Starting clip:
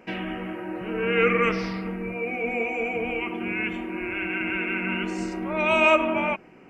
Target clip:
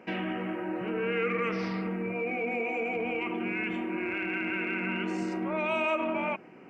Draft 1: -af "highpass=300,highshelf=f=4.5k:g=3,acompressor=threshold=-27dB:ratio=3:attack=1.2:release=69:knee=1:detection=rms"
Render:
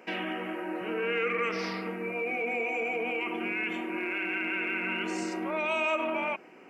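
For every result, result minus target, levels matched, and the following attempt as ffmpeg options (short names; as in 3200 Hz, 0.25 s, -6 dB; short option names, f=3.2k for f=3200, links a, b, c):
8000 Hz band +8.5 dB; 125 Hz band -7.5 dB
-af "highpass=300,highshelf=f=4.5k:g=-8.5,acompressor=threshold=-27dB:ratio=3:attack=1.2:release=69:knee=1:detection=rms"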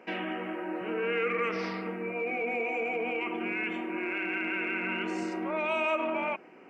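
125 Hz band -6.5 dB
-af "highpass=130,highshelf=f=4.5k:g=-8.5,acompressor=threshold=-27dB:ratio=3:attack=1.2:release=69:knee=1:detection=rms"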